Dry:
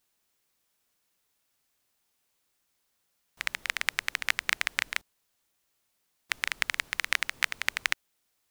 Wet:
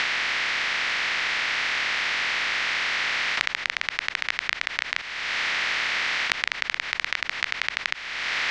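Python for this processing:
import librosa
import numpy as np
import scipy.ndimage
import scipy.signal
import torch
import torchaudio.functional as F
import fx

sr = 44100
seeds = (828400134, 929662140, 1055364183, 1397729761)

y = fx.bin_compress(x, sr, power=0.2)
y = scipy.signal.sosfilt(scipy.signal.butter(4, 5300.0, 'lowpass', fs=sr, output='sos'), y)
y = fx.band_squash(y, sr, depth_pct=100)
y = y * librosa.db_to_amplitude(-2.0)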